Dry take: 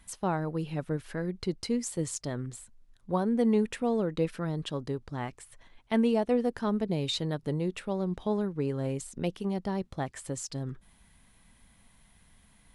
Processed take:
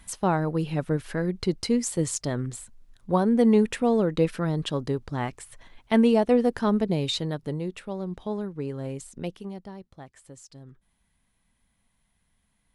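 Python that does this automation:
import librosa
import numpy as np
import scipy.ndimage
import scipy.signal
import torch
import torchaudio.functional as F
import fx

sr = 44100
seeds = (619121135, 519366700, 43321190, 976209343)

y = fx.gain(x, sr, db=fx.line((6.76, 6.0), (7.77, -1.5), (9.26, -1.5), (9.83, -11.0)))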